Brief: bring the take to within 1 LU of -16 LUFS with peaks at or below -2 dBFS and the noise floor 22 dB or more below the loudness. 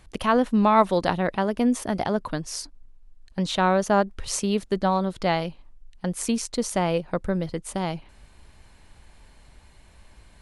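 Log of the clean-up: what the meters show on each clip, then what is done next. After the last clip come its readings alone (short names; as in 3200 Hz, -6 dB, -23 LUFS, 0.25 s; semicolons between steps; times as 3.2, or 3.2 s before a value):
loudness -24.5 LUFS; peak -6.0 dBFS; loudness target -16.0 LUFS
-> gain +8.5 dB; limiter -2 dBFS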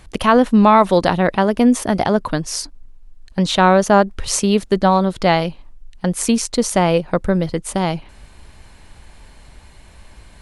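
loudness -16.5 LUFS; peak -2.0 dBFS; noise floor -45 dBFS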